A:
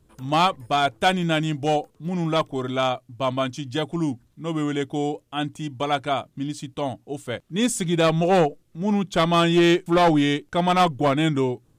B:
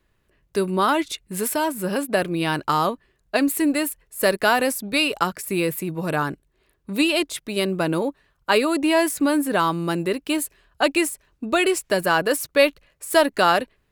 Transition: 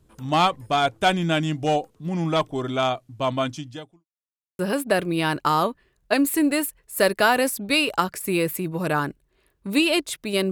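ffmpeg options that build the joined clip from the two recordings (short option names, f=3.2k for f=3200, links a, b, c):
-filter_complex "[0:a]apad=whole_dur=10.51,atrim=end=10.51,asplit=2[a][b];[a]atrim=end=4.05,asetpts=PTS-STARTPTS,afade=t=out:st=3.54:d=0.51:c=qua[c];[b]atrim=start=4.05:end=4.59,asetpts=PTS-STARTPTS,volume=0[d];[1:a]atrim=start=1.82:end=7.74,asetpts=PTS-STARTPTS,afade=t=in:d=0.004:c=hsin[e];[c][d][e]concat=n=3:v=0:a=1"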